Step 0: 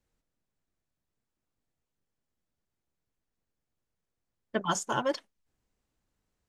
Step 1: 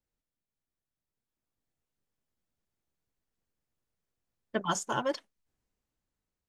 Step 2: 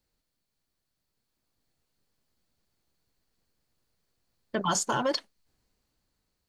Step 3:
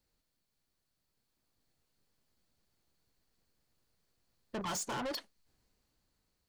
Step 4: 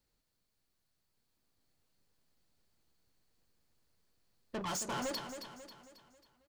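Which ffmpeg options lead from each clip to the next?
ffmpeg -i in.wav -af "dynaudnorm=framelen=420:gausssize=7:maxgain=8dB,volume=-9dB" out.wav
ffmpeg -i in.wav -af "equalizer=frequency=4400:width_type=o:width=0.25:gain=9.5,alimiter=level_in=2.5dB:limit=-24dB:level=0:latency=1:release=35,volume=-2.5dB,volume=8.5dB" out.wav
ffmpeg -i in.wav -af "asoftclip=type=tanh:threshold=-34dB,volume=-1dB" out.wav
ffmpeg -i in.wav -af "flanger=delay=7:depth=5.9:regen=-78:speed=0.42:shape=sinusoidal,aecho=1:1:271|542|813|1084|1355:0.376|0.173|0.0795|0.0366|0.0168,volume=4dB" out.wav

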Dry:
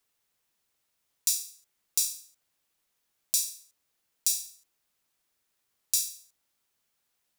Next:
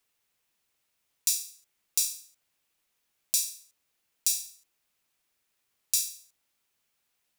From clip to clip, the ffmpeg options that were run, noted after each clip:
ffmpeg -i in.wav -af "equalizer=frequency=2500:width_type=o:width=0.64:gain=3.5" out.wav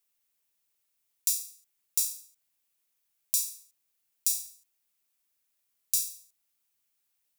ffmpeg -i in.wav -af "crystalizer=i=1.5:c=0,volume=-9dB" out.wav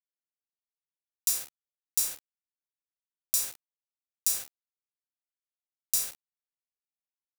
ffmpeg -i in.wav -af "acrusher=bits=5:mix=0:aa=0.000001" out.wav

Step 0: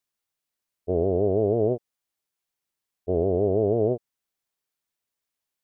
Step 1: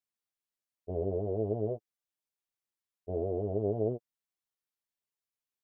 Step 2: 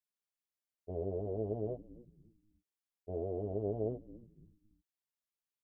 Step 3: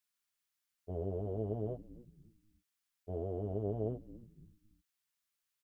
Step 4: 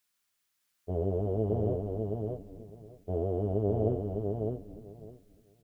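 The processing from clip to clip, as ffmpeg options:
ffmpeg -i in.wav -af "flanger=delay=8.5:depth=1.5:regen=11:speed=1.5:shape=sinusoidal,volume=-6.5dB" out.wav
ffmpeg -i in.wav -filter_complex "[0:a]asplit=4[link_01][link_02][link_03][link_04];[link_02]adelay=280,afreqshift=-140,volume=-17dB[link_05];[link_03]adelay=560,afreqshift=-280,volume=-25.9dB[link_06];[link_04]adelay=840,afreqshift=-420,volume=-34.7dB[link_07];[link_01][link_05][link_06][link_07]amix=inputs=4:normalize=0,volume=-5dB" out.wav
ffmpeg -i in.wav -af "firequalizer=gain_entry='entry(160,0);entry(340,-4);entry(540,-5);entry(1300,5)':delay=0.05:min_phase=1,volume=2.5dB" out.wav
ffmpeg -i in.wav -af "aecho=1:1:607|1214|1821:0.631|0.101|0.0162,volume=7.5dB" out.wav

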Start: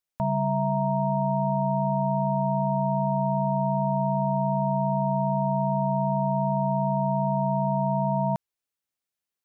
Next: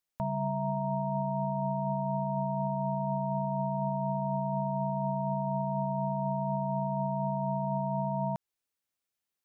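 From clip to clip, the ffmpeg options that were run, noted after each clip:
ffmpeg -i in.wav -af "alimiter=limit=-23.5dB:level=0:latency=1:release=143" out.wav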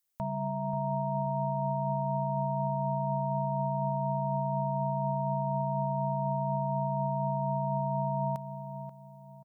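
ffmpeg -i in.wav -filter_complex "[0:a]acontrast=76,crystalizer=i=1.5:c=0,asplit=2[link_01][link_02];[link_02]adelay=534,lowpass=frequency=1100:poles=1,volume=-8.5dB,asplit=2[link_03][link_04];[link_04]adelay=534,lowpass=frequency=1100:poles=1,volume=0.36,asplit=2[link_05][link_06];[link_06]adelay=534,lowpass=frequency=1100:poles=1,volume=0.36,asplit=2[link_07][link_08];[link_08]adelay=534,lowpass=frequency=1100:poles=1,volume=0.36[link_09];[link_01][link_03][link_05][link_07][link_09]amix=inputs=5:normalize=0,volume=-8.5dB" out.wav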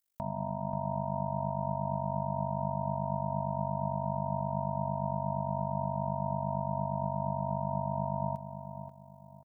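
ffmpeg -i in.wav -af "tremolo=f=49:d=0.919,volume=1.5dB" out.wav

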